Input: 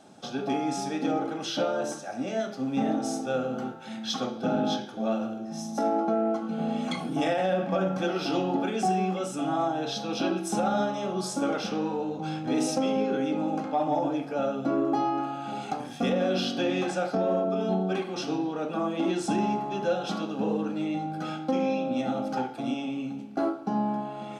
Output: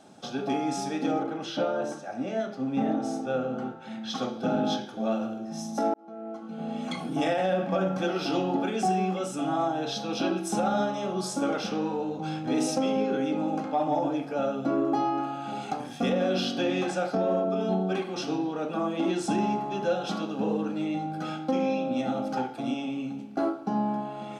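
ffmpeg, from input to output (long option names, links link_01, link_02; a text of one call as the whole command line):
ffmpeg -i in.wav -filter_complex "[0:a]asettb=1/sr,asplit=3[link_01][link_02][link_03];[link_01]atrim=end=1.234[link_04];[link_02]atrim=start=1.23:end=4.15,asetpts=PTS-STARTPTS,afade=type=in:duration=0.004:curve=qsin,afade=type=out:start_time=2.916:duration=0.004:curve=qsin,highshelf=frequency=4300:gain=-11[link_05];[link_03]atrim=start=4.146[link_06];[link_04][link_05]acrossfade=duration=0.004:curve1=hsin:curve2=qsin[link_07];[link_07][link_06]acrossfade=duration=0.004:curve1=qsin:curve2=hsin,asplit=2[link_08][link_09];[link_08]atrim=end=5.94,asetpts=PTS-STARTPTS,afade=type=out:start_time=5.936:duration=0.004:curve=hsin[link_10];[link_09]atrim=start=5.94,asetpts=PTS-STARTPTS,afade=type=in:duration=1.27[link_11];[link_10][link_11]concat=n=2:v=0:a=1" out.wav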